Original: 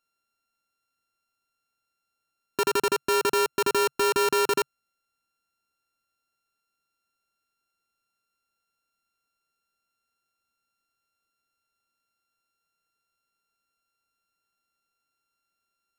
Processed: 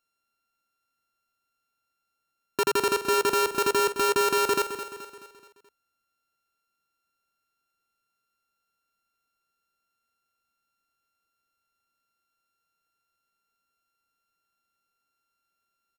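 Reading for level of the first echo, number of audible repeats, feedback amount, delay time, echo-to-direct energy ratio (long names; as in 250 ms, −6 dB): −11.0 dB, 4, 49%, 214 ms, −10.0 dB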